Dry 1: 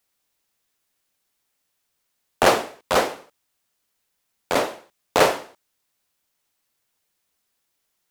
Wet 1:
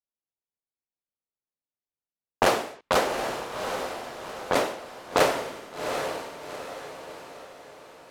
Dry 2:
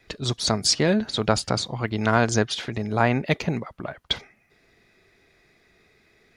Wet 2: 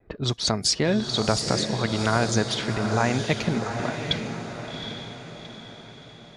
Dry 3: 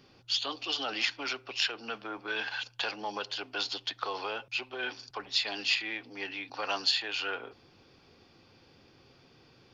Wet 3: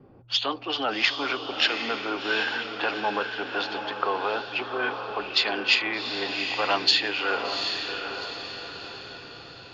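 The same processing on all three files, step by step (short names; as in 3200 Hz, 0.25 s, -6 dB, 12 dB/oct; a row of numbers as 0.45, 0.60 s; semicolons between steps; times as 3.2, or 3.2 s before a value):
gate with hold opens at -57 dBFS; low-pass opened by the level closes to 760 Hz, open at -20.5 dBFS; compressor 2:1, threshold -25 dBFS; diffused feedback echo 0.77 s, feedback 47%, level -6 dB; normalise peaks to -6 dBFS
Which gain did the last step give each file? +2.5, +2.5, +9.5 dB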